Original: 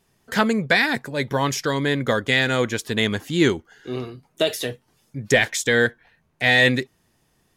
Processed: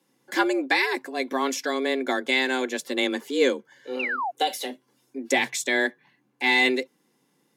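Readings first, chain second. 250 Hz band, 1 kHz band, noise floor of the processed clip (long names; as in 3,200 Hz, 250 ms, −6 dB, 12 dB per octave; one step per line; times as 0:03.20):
−4.5 dB, 0.0 dB, −69 dBFS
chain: frequency shifter +130 Hz
sound drawn into the spectrogram fall, 0:03.99–0:04.31, 660–2,900 Hz −24 dBFS
notch comb filter 630 Hz
level −2.5 dB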